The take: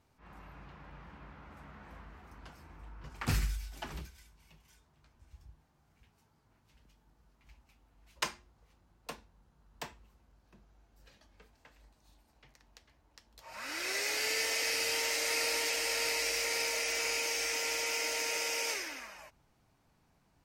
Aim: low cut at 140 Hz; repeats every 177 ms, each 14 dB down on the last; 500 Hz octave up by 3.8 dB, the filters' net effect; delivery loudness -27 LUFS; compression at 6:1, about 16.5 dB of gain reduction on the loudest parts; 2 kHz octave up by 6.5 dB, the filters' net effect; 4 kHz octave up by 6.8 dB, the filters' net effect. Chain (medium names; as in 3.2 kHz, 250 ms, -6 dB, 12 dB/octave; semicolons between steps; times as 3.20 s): high-pass 140 Hz; peaking EQ 500 Hz +4 dB; peaking EQ 2 kHz +5 dB; peaking EQ 4 kHz +8 dB; compression 6:1, threshold -42 dBFS; feedback delay 177 ms, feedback 20%, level -14 dB; trim +16.5 dB